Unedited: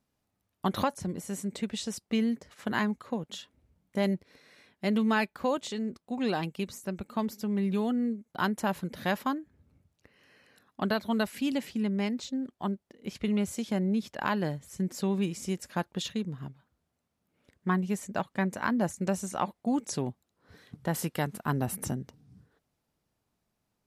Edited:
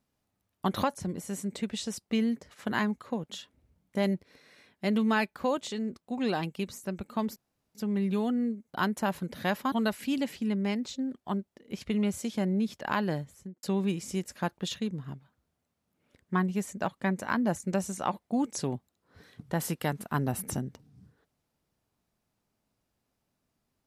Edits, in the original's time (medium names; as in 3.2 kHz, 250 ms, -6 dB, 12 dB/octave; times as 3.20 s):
7.36 s: insert room tone 0.39 s
9.33–11.06 s: delete
14.53–14.97 s: studio fade out